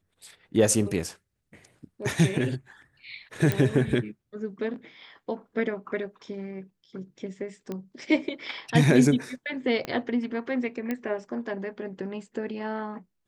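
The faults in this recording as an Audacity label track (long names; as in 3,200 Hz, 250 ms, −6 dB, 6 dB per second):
3.520000	3.520000	click −11 dBFS
7.720000	7.720000	click −21 dBFS
9.850000	9.850000	click −17 dBFS
10.910000	10.910000	click −17 dBFS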